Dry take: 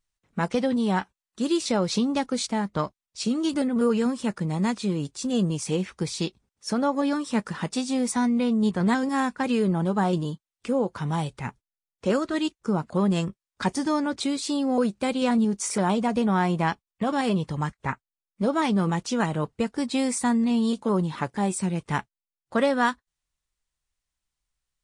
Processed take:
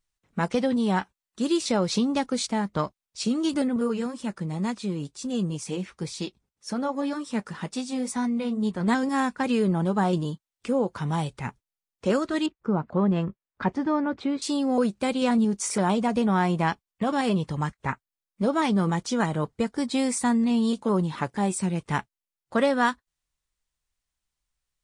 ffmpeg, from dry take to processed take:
ffmpeg -i in.wav -filter_complex "[0:a]asettb=1/sr,asplit=3[link_01][link_02][link_03];[link_01]atrim=end=3.764[link_04];[link_02]atrim=start=3.76:end=8.88,asetpts=PTS-STARTPTS,afade=type=in:duration=0.004:curve=qsin,afade=type=out:start_time=5.116:duration=0.004:curve=qsin,flanger=delay=3:depth=4.6:regen=-59:speed=2:shape=triangular[link_05];[link_03]atrim=start=8.876[link_06];[link_04][link_05]acrossfade=duration=0.004:curve1=hsin:curve2=qsin[link_07];[link_07][link_06]acrossfade=duration=0.004:curve1=qsin:curve2=hsin,asettb=1/sr,asplit=3[link_08][link_09][link_10];[link_08]atrim=end=12.464[link_11];[link_09]atrim=start=12.46:end=14.42,asetpts=PTS-STARTPTS,afade=type=in:duration=0.004:curve=qsin,afade=type=out:start_time=1.956:duration=0.004:curve=qsin,lowpass=2000[link_12];[link_10]atrim=start=14.416[link_13];[link_11][link_12]acrossfade=duration=0.004:curve1=hsin:curve2=qsin[link_14];[link_14][link_13]acrossfade=duration=0.004:curve1=qsin:curve2=hsin,asettb=1/sr,asplit=3[link_15][link_16][link_17];[link_15]atrim=end=18.694[link_18];[link_16]atrim=start=18.69:end=19.97,asetpts=PTS-STARTPTS,afade=type=in:duration=0.004:curve=qsin,afade=type=out:start_time=1.276:duration=0.004:curve=qsin,bandreject=frequency=2700:width=9[link_19];[link_17]atrim=start=19.966[link_20];[link_18][link_19]acrossfade=duration=0.004:curve1=hsin:curve2=qsin[link_21];[link_21][link_20]acrossfade=duration=0.004:curve1=qsin:curve2=hsin" out.wav

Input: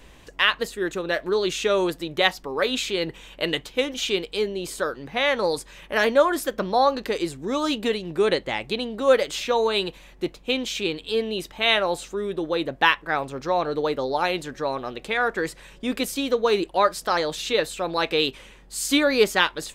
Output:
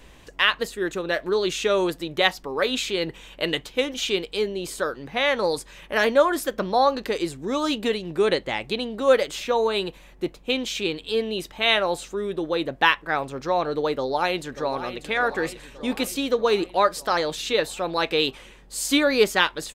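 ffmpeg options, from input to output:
ffmpeg -i in.wav -filter_complex "[0:a]asettb=1/sr,asplit=3[link_01][link_02][link_03];[link_01]atrim=end=9.274[link_04];[link_02]atrim=start=9.27:end=10.5,asetpts=PTS-STARTPTS,afade=type=in:duration=0.004:curve=qsin,afade=type=out:start_time=1.226:duration=0.004:curve=qsin,equalizer=frequency=4200:width_type=o:width=2.1:gain=-3.5[link_05];[link_03]atrim=start=10.496[link_06];[link_04][link_05]acrossfade=duration=0.004:curve1=hsin:curve2=qsin[link_07];[link_07][link_06]acrossfade=duration=0.004:curve1=qsin:curve2=hsin,asplit=2[link_08][link_09];[link_09]afade=type=in:start_time=13.93:duration=0.01,afade=type=out:start_time=15.08:duration=0.01,aecho=0:1:590|1180|1770|2360|2950|3540|4130|4720:0.266073|0.172947|0.112416|0.0730702|0.0474956|0.0308721|0.0200669|0.0130435[link_10];[link_08][link_10]amix=inputs=2:normalize=0" out.wav

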